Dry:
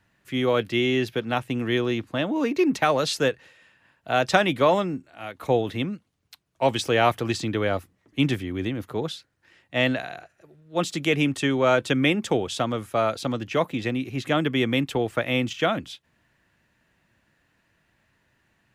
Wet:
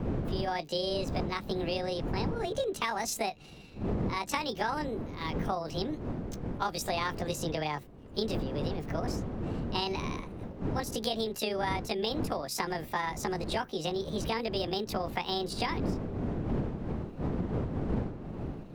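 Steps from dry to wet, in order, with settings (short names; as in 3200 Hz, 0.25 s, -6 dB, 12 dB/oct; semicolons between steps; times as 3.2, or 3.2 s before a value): delay-line pitch shifter +7 st; wind noise 280 Hz -28 dBFS; compressor 6:1, threshold -29 dBFS, peak gain reduction 16.5 dB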